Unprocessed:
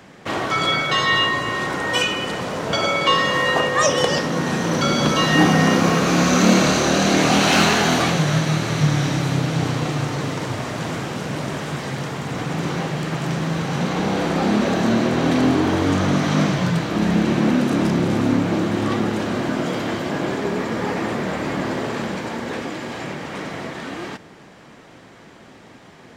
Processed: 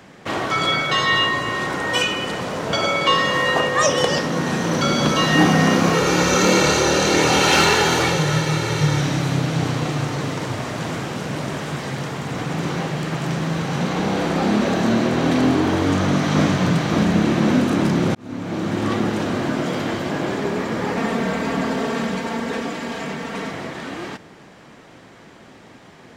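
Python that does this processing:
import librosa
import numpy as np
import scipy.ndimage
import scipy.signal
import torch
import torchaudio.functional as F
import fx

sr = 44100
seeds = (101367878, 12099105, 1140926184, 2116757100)

y = fx.comb(x, sr, ms=2.2, depth=0.65, at=(5.93, 9.01))
y = fx.echo_throw(y, sr, start_s=15.78, length_s=0.68, ms=570, feedback_pct=75, wet_db=-5.0)
y = fx.comb(y, sr, ms=4.4, depth=0.7, at=(20.97, 23.51))
y = fx.edit(y, sr, fx.fade_in_span(start_s=18.15, length_s=0.73), tone=tone)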